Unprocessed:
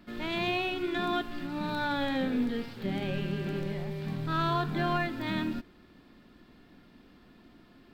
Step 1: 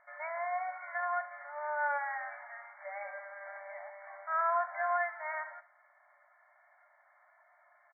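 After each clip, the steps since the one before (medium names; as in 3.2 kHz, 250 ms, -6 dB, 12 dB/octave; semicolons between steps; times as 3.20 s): FFT band-pass 560–2300 Hz; early reflections 42 ms -15 dB, 70 ms -15.5 dB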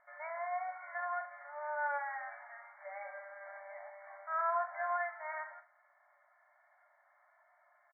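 distance through air 250 m; doubling 42 ms -14 dB; trim -2.5 dB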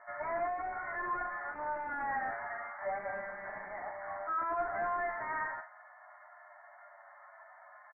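overdrive pedal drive 27 dB, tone 1.5 kHz, clips at -23.5 dBFS; elliptic low-pass 2 kHz, stop band 40 dB; endless flanger 9.5 ms -0.46 Hz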